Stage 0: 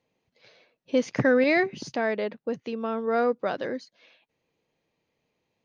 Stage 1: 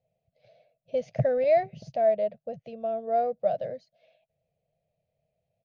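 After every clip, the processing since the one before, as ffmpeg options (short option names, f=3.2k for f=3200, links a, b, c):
-af "firequalizer=gain_entry='entry(150,0);entry(290,-27);entry(650,6);entry(940,-26);entry(2400,-16);entry(8100,-22)':delay=0.05:min_phase=1,volume=3.5dB"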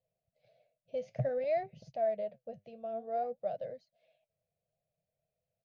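-af "flanger=delay=1.9:depth=8.3:regen=70:speed=0.55:shape=sinusoidal,volume=-4.5dB"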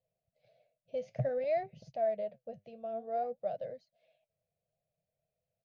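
-af anull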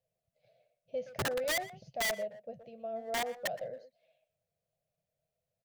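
-filter_complex "[0:a]aeval=exprs='(mod(23.7*val(0)+1,2)-1)/23.7':c=same,asplit=2[a][b];[b]adelay=120,highpass=300,lowpass=3.4k,asoftclip=type=hard:threshold=-37dB,volume=-11dB[c];[a][c]amix=inputs=2:normalize=0"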